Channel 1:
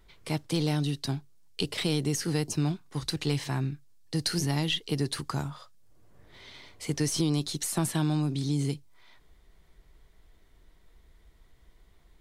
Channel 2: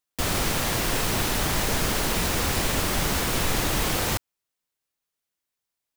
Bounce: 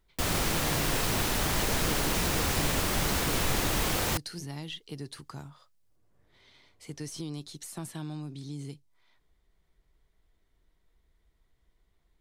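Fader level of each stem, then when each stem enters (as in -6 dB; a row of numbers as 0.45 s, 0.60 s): -11.0 dB, -3.5 dB; 0.00 s, 0.00 s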